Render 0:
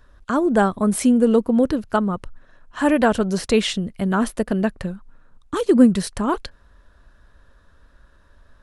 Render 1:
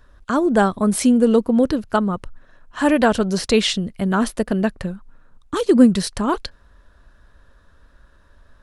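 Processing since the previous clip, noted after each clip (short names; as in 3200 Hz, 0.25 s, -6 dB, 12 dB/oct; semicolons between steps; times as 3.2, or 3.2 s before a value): dynamic EQ 4600 Hz, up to +5 dB, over -42 dBFS, Q 1.2; gain +1 dB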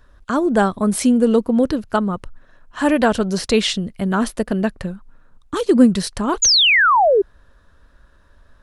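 painted sound fall, 6.42–7.22, 370–7100 Hz -13 dBFS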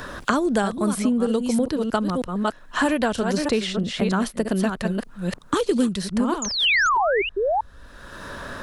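reverse delay 0.317 s, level -7.5 dB; three-band squash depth 100%; gain -6 dB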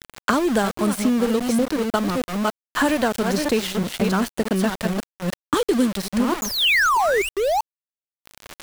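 sample gate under -26.5 dBFS; gain +1.5 dB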